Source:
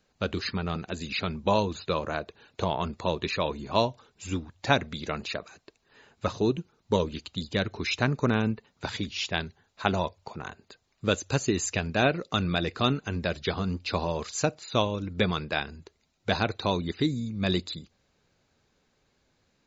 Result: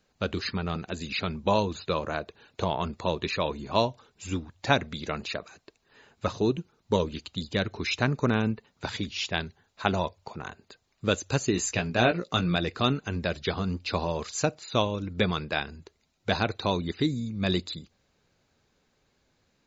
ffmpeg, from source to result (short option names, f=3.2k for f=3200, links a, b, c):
-filter_complex "[0:a]asettb=1/sr,asplit=3[a][b][c];[a]atrim=end=11.524[d];[b]atrim=start=11.52:end=12.56,asetpts=PTS-STARTPTS,afade=t=in:d=0.004:c=qsin,afade=t=out:st=1.036:d=0.004:c=qsin,asplit=2[e][f];[f]adelay=17,volume=-6dB[g];[e][g]amix=inputs=2:normalize=0,atrim=end_sample=45864[h];[c]atrim=start=12.556[i];[d][h]acrossfade=d=0.004:c1=hsin:c2=qsin[j];[j][i]acrossfade=d=0.004:c1=qsin:c2=hsin"